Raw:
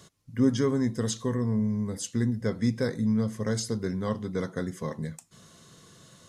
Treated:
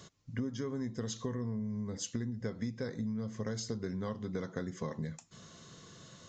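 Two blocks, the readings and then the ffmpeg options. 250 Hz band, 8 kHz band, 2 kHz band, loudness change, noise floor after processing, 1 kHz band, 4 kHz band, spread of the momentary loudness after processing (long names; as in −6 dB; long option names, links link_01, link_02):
−10.0 dB, −7.0 dB, −8.5 dB, −9.5 dB, −60 dBFS, −8.0 dB, −7.0 dB, 16 LU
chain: -af "acompressor=threshold=-33dB:ratio=12,aresample=16000,aresample=44100"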